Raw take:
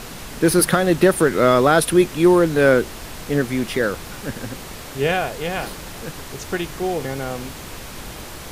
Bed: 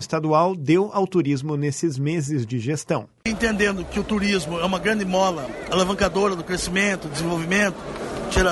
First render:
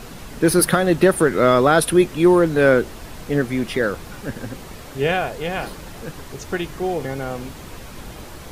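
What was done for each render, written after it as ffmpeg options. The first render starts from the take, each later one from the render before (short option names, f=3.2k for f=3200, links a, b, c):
-af "afftdn=nr=6:nf=-36"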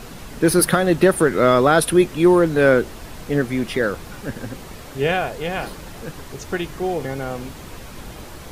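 -af anull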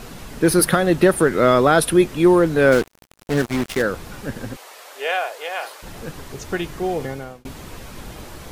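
-filter_complex "[0:a]asplit=3[a][b][c];[a]afade=t=out:st=2.71:d=0.02[d];[b]acrusher=bits=3:mix=0:aa=0.5,afade=t=in:st=2.71:d=0.02,afade=t=out:st=3.81:d=0.02[e];[c]afade=t=in:st=3.81:d=0.02[f];[d][e][f]amix=inputs=3:normalize=0,asplit=3[g][h][i];[g]afade=t=out:st=4.55:d=0.02[j];[h]highpass=f=540:w=0.5412,highpass=f=540:w=1.3066,afade=t=in:st=4.55:d=0.02,afade=t=out:st=5.82:d=0.02[k];[i]afade=t=in:st=5.82:d=0.02[l];[j][k][l]amix=inputs=3:normalize=0,asplit=2[m][n];[m]atrim=end=7.45,asetpts=PTS-STARTPTS,afade=t=out:st=7.03:d=0.42[o];[n]atrim=start=7.45,asetpts=PTS-STARTPTS,afade=t=in:d=0.004:c=hsin[p];[o][p]concat=n=2:v=0:a=1"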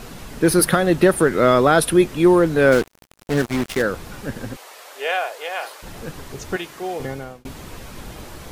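-filter_complex "[0:a]asettb=1/sr,asplit=3[a][b][c];[a]atrim=end=6.564[d];[b]atrim=start=6.56:end=7,asetpts=PTS-STARTPTS,afade=t=in:d=0.004:c=qsin,afade=t=out:st=0.436:d=0.004:c=qsin,highpass=f=570:p=1[e];[c]atrim=start=6.996[f];[d][e]acrossfade=d=0.004:c1=hsin:c2=qsin[g];[g][f]acrossfade=d=0.004:c1=qsin:c2=hsin"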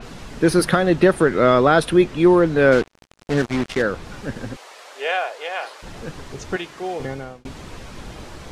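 -af "lowpass=7.4k,adynamicequalizer=threshold=0.01:dfrequency=5200:dqfactor=0.7:tfrequency=5200:tqfactor=0.7:attack=5:release=100:ratio=0.375:range=2.5:mode=cutabove:tftype=highshelf"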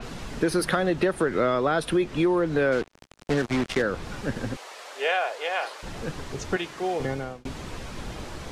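-filter_complex "[0:a]acrossover=split=300|2400[a][b][c];[a]alimiter=limit=-19.5dB:level=0:latency=1[d];[d][b][c]amix=inputs=3:normalize=0,acompressor=threshold=-20dB:ratio=5"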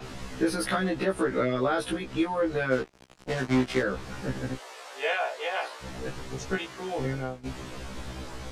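-af "afftfilt=real='re*1.73*eq(mod(b,3),0)':imag='im*1.73*eq(mod(b,3),0)':win_size=2048:overlap=0.75"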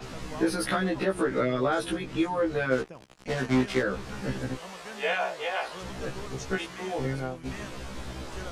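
-filter_complex "[1:a]volume=-23.5dB[a];[0:a][a]amix=inputs=2:normalize=0"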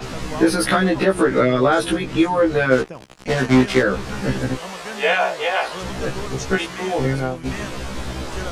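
-af "volume=10dB"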